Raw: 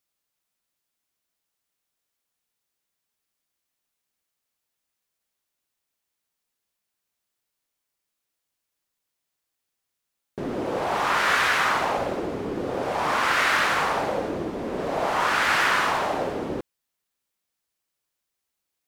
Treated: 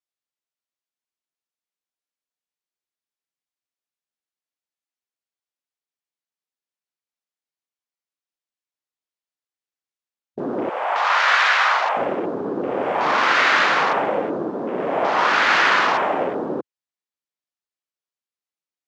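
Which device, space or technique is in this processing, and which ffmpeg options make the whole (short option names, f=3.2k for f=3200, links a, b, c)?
over-cleaned archive recording: -filter_complex "[0:a]asettb=1/sr,asplit=3[a][b][c];[a]atrim=end=10.694[d];[b]atrim=start=10.69:end=11.97,asetpts=PTS-STARTPTS,afade=t=in:d=0.004:c=qsin,afade=t=out:st=1.276:d=0.004:c=qsin,highpass=f=610:w=0.5412,highpass=f=610:w=1.3066[e];[c]atrim=start=11.966[f];[d][e]acrossfade=d=0.004:c1=hsin:c2=qsin[g];[g][f]acrossfade=d=0.004:c1=qsin:c2=hsin,highpass=200,lowpass=7.4k,afwtdn=0.0126,volume=5dB"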